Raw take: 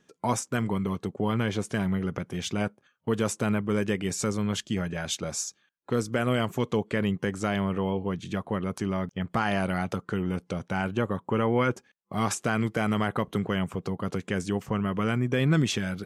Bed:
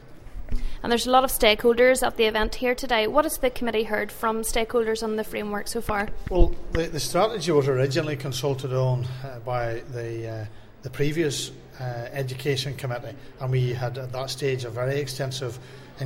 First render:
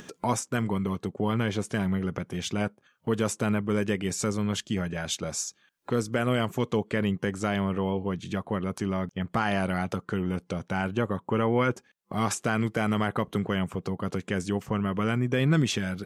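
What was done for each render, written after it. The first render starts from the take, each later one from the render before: upward compressor, threshold -32 dBFS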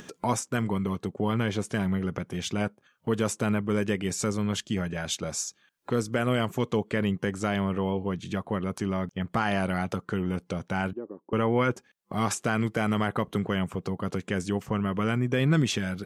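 10.93–11.33 ladder band-pass 370 Hz, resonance 55%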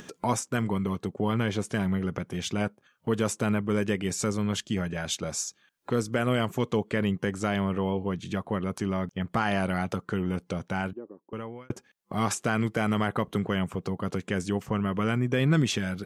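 10.63–11.7 fade out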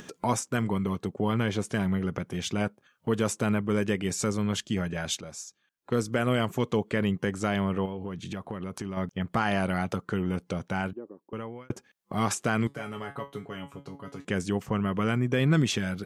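5.21–5.92 gain -9 dB; 7.85–8.97 compressor, threshold -30 dBFS; 12.67–14.25 resonator 140 Hz, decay 0.22 s, mix 90%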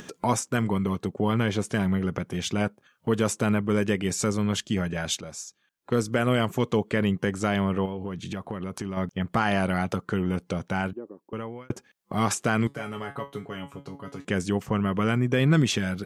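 gain +2.5 dB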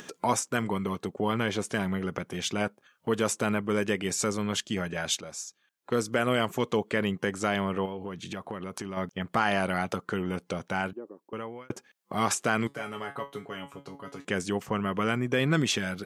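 low shelf 200 Hz -11 dB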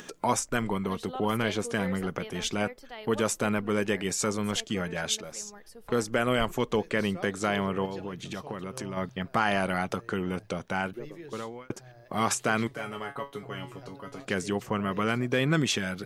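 add bed -21 dB

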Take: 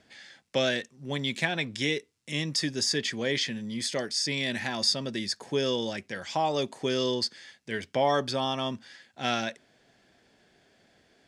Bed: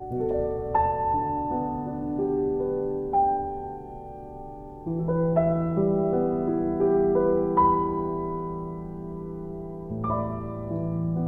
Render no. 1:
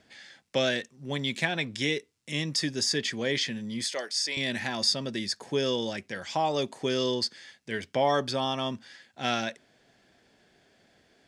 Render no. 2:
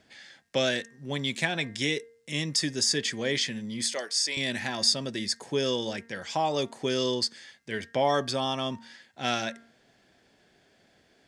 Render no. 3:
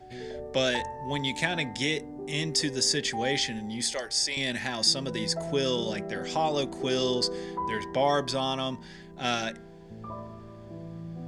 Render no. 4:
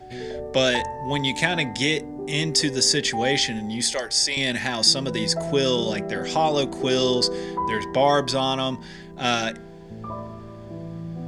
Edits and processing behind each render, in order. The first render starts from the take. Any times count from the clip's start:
3.84–4.37 HPF 530 Hz
de-hum 230.4 Hz, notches 9; dynamic EQ 8300 Hz, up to +6 dB, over -47 dBFS, Q 1.3
add bed -12.5 dB
gain +6 dB

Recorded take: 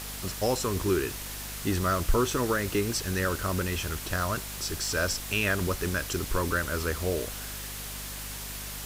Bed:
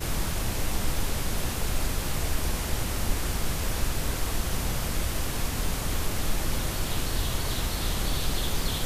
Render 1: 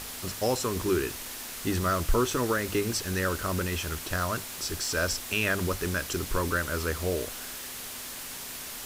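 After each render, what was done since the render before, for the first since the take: notches 50/100/150/200 Hz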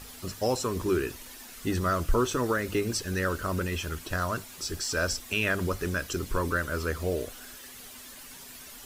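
denoiser 10 dB, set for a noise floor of -40 dBFS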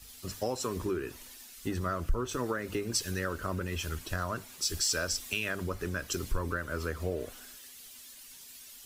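compressor 6:1, threshold -30 dBFS, peak gain reduction 10.5 dB; three-band expander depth 70%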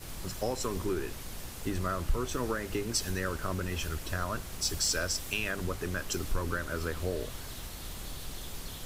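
add bed -14 dB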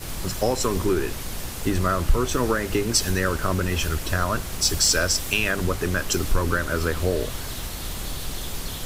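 gain +10 dB

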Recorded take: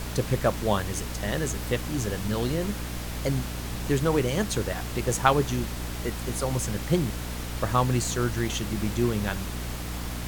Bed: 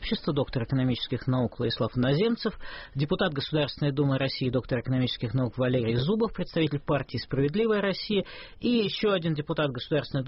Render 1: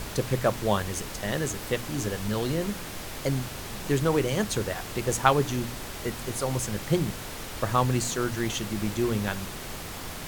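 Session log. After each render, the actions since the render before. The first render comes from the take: de-hum 60 Hz, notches 5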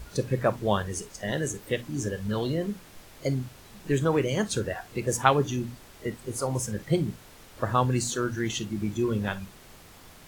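noise print and reduce 13 dB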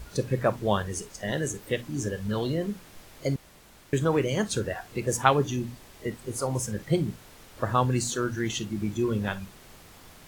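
3.36–3.93 room tone; 5.45–6.11 notch 1400 Hz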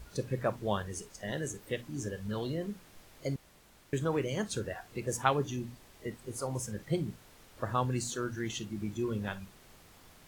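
gain -7 dB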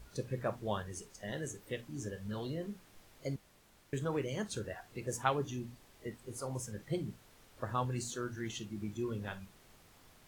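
flange 1.2 Hz, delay 6.8 ms, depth 3.2 ms, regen -72%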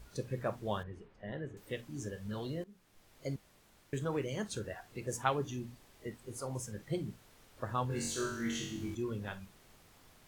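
0.83–1.57 air absorption 470 m; 2.64–3.3 fade in, from -19 dB; 7.88–8.95 flutter echo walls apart 3.7 m, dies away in 0.72 s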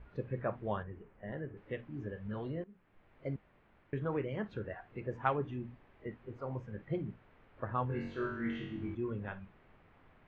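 LPF 2400 Hz 24 dB/oct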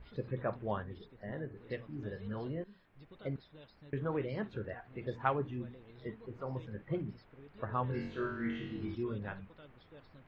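add bed -30 dB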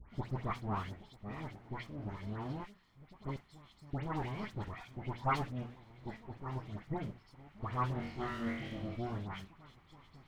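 minimum comb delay 0.93 ms; dispersion highs, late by 0.108 s, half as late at 1900 Hz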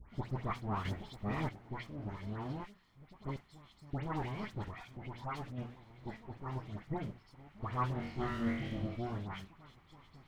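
0.85–1.49 gain +7.5 dB; 4.7–5.58 compressor 2:1, threshold -43 dBFS; 8.16–8.87 low shelf 270 Hz +6 dB

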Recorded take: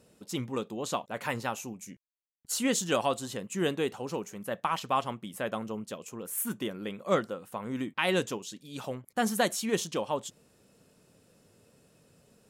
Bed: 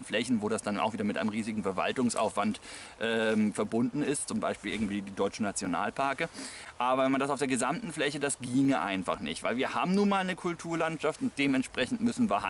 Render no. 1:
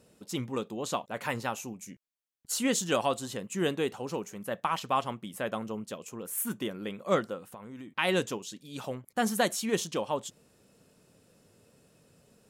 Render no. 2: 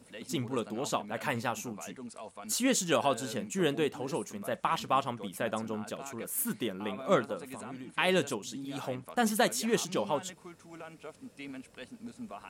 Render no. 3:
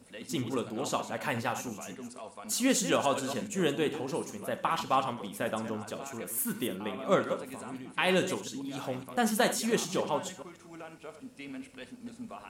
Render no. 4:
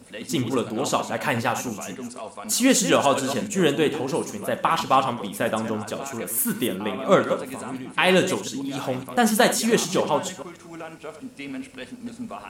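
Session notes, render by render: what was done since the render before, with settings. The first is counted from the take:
7.5–7.92 compressor 4:1, threshold -42 dBFS
add bed -16 dB
reverse delay 0.139 s, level -11 dB; non-linear reverb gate 0.11 s flat, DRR 10 dB
gain +8.5 dB

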